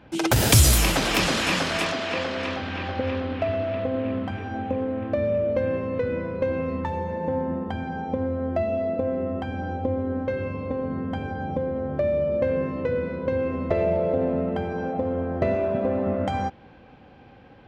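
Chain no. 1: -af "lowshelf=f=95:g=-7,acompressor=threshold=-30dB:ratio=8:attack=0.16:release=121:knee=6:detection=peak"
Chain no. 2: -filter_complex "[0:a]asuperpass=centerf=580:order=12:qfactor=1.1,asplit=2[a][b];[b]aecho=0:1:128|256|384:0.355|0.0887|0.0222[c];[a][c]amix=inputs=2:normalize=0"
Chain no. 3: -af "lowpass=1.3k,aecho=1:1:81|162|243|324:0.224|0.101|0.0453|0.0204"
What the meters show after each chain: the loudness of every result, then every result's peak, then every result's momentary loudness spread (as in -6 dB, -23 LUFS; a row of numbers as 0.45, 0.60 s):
-36.0, -28.5, -26.5 LUFS; -25.5, -11.5, -8.0 dBFS; 2, 9, 6 LU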